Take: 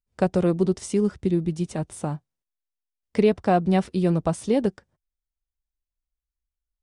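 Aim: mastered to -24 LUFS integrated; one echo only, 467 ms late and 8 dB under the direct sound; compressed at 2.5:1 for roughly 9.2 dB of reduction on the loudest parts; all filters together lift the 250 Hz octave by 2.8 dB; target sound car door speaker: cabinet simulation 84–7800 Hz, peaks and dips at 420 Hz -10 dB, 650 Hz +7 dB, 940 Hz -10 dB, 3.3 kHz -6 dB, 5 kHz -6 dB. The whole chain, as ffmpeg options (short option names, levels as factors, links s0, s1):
-af "equalizer=f=250:t=o:g=5.5,acompressor=threshold=0.0562:ratio=2.5,highpass=84,equalizer=f=420:t=q:w=4:g=-10,equalizer=f=650:t=q:w=4:g=7,equalizer=f=940:t=q:w=4:g=-10,equalizer=f=3300:t=q:w=4:g=-6,equalizer=f=5000:t=q:w=4:g=-6,lowpass=f=7800:w=0.5412,lowpass=f=7800:w=1.3066,aecho=1:1:467:0.398,volume=1.78"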